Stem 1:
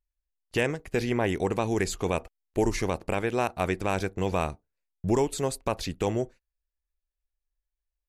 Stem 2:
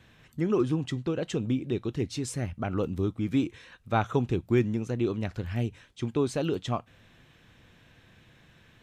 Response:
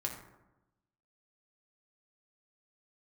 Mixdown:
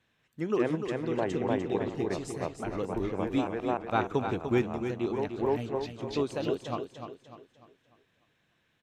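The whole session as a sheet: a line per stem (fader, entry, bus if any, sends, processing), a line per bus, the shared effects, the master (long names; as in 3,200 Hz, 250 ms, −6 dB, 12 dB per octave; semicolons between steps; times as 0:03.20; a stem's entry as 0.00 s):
+3.0 dB, 0.00 s, no send, echo send −7.5 dB, treble cut that deepens with the level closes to 1,300 Hz, closed at −23.5 dBFS; volume swells 115 ms; multiband upward and downward expander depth 70%; automatic ducking −12 dB, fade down 1.90 s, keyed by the second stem
+0.5 dB, 0.00 s, no send, echo send −8 dB, expander for the loud parts 1.5 to 1, over −47 dBFS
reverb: not used
echo: repeating echo 298 ms, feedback 40%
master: low-shelf EQ 150 Hz −11 dB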